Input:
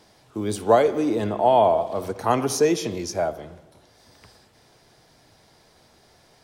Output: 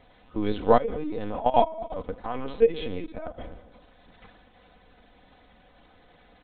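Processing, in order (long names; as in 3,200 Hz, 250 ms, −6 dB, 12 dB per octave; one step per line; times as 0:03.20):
0:00.70–0:03.39: output level in coarse steps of 16 dB
linear-prediction vocoder at 8 kHz pitch kept
comb filter 4 ms, depth 56%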